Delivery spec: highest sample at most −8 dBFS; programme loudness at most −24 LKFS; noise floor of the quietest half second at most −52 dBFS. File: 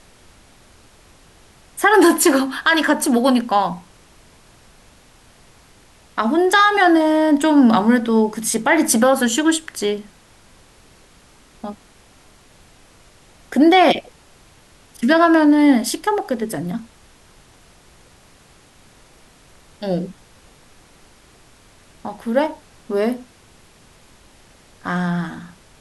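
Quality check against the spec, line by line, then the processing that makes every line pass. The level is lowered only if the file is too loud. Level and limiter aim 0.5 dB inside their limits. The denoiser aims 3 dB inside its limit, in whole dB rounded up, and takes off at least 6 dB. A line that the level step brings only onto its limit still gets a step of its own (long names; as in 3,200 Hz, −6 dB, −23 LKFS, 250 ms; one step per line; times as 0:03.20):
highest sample −4.0 dBFS: out of spec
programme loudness −16.5 LKFS: out of spec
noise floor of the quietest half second −50 dBFS: out of spec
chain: level −8 dB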